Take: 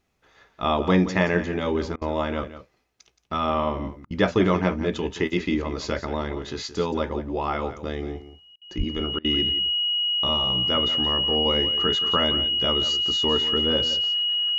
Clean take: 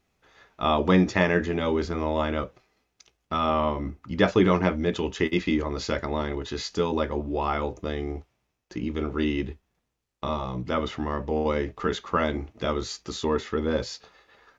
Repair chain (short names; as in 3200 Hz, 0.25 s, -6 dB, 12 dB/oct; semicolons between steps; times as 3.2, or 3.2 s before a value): notch 2900 Hz, Q 30; 8.77–8.89 HPF 140 Hz 24 dB/oct; interpolate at 1.96/4.05/8.56/9.19, 54 ms; inverse comb 0.173 s -13 dB